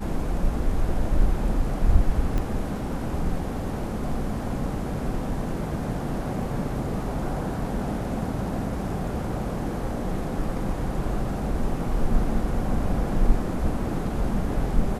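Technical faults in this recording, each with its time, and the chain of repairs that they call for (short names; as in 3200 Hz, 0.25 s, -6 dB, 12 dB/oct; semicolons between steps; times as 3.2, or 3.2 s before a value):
2.38 pop -16 dBFS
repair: de-click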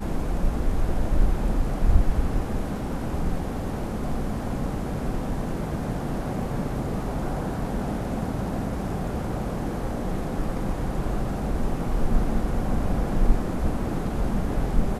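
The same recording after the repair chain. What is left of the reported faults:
2.38 pop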